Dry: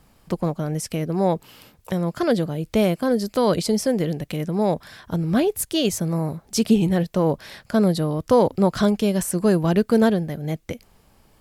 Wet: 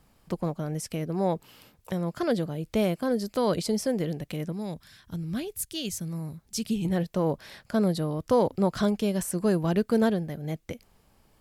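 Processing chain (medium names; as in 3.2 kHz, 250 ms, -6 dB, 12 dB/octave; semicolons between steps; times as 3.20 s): 4.52–6.85 s: peaking EQ 660 Hz -13 dB 2.6 oct; trim -6 dB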